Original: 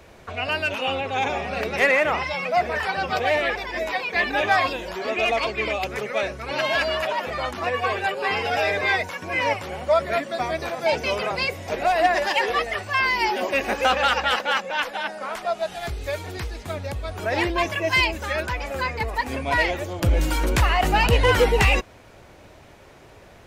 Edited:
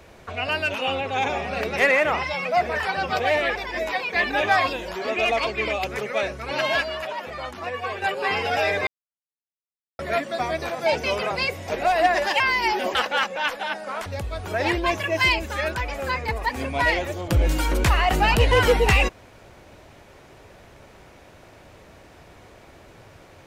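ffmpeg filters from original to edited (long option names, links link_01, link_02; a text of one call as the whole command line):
ffmpeg -i in.wav -filter_complex "[0:a]asplit=8[link_01][link_02][link_03][link_04][link_05][link_06][link_07][link_08];[link_01]atrim=end=6.812[link_09];[link_02]atrim=start=6.808:end=8.022,asetpts=PTS-STARTPTS,volume=-5.5dB[link_10];[link_03]atrim=start=8.018:end=8.87,asetpts=PTS-STARTPTS,afade=type=out:start_time=0.848:duration=0.004:curve=hsin[link_11];[link_04]atrim=start=8.87:end=9.99,asetpts=PTS-STARTPTS,volume=0[link_12];[link_05]atrim=start=9.99:end=12.402,asetpts=PTS-STARTPTS,afade=type=in:duration=0.004:curve=hsin[link_13];[link_06]atrim=start=12.968:end=13.522[link_14];[link_07]atrim=start=14.288:end=15.402[link_15];[link_08]atrim=start=16.778[link_16];[link_09][link_10]acrossfade=duration=0.004:curve1=hsin:curve2=hsin[link_17];[link_11][link_12][link_13]concat=n=3:v=0:a=1[link_18];[link_17][link_18]acrossfade=duration=0.004:curve1=hsin:curve2=hsin[link_19];[link_19][link_14]acrossfade=duration=0.004:curve1=hsin:curve2=hsin[link_20];[link_20][link_15]acrossfade=duration=0.004:curve1=hsin:curve2=hsin[link_21];[link_21][link_16]acrossfade=duration=0.004:curve1=hsin:curve2=hsin" out.wav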